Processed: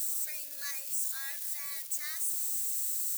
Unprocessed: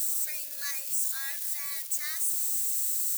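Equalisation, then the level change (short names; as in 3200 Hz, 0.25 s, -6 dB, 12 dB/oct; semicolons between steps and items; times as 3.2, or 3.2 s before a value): low shelf 340 Hz +5.5 dB; -4.0 dB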